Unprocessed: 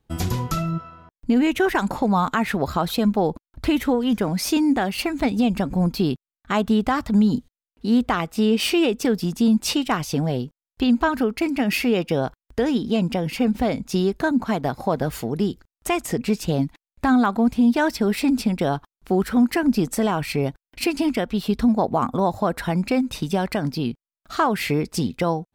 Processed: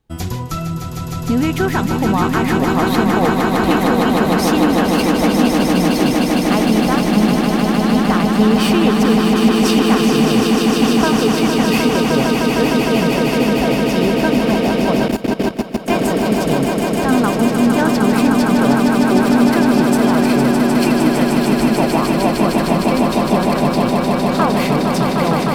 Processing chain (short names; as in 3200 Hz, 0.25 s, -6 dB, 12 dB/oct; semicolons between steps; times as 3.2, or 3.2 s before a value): on a send: swelling echo 0.153 s, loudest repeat 8, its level -5.5 dB; 15.08–15.88 on the sum: level quantiser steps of 16 dB; gain +1 dB